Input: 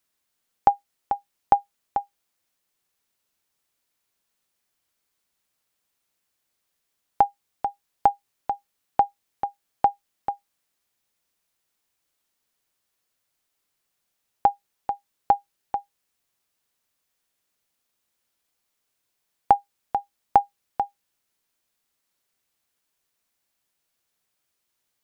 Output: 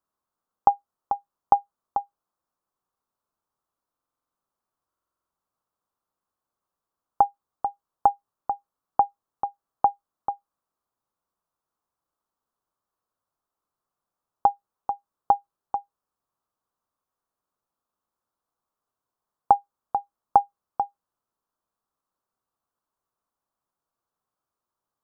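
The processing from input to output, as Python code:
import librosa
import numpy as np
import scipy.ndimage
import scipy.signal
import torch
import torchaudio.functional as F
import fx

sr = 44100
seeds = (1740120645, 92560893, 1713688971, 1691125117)

y = fx.high_shelf_res(x, sr, hz=1600.0, db=-11.0, q=3.0)
y = fx.buffer_glitch(y, sr, at_s=(3.92, 4.88), block=2048, repeats=8)
y = F.gain(torch.from_numpy(y), -4.0).numpy()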